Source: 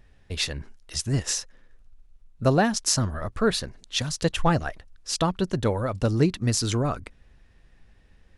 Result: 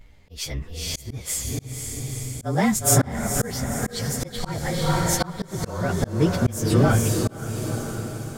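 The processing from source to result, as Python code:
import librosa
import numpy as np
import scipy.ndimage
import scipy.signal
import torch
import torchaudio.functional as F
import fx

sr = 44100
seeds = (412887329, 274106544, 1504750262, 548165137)

y = fx.partial_stretch(x, sr, pct=109)
y = fx.echo_diffused(y, sr, ms=489, feedback_pct=52, wet_db=-5.0)
y = fx.auto_swell(y, sr, attack_ms=375.0)
y = y * librosa.db_to_amplitude(8.5)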